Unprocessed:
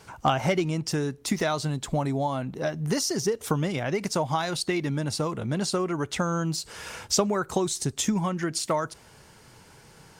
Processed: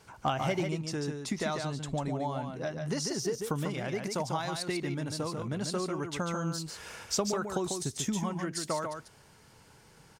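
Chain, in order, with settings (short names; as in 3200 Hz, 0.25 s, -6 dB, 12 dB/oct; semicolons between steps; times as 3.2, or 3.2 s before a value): 0.83–3.1 LPF 9200 Hz 12 dB/oct; echo 0.144 s -5.5 dB; gain -7 dB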